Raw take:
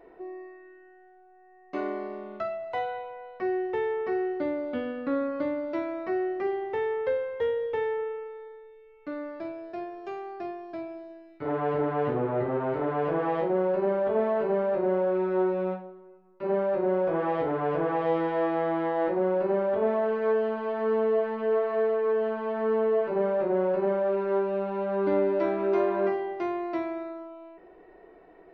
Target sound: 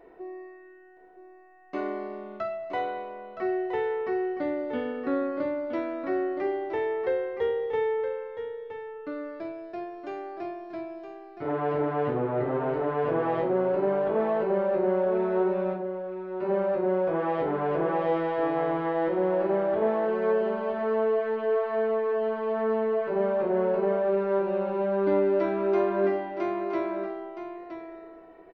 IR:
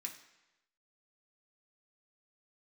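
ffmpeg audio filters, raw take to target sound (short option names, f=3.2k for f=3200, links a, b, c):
-af "aecho=1:1:968:0.355"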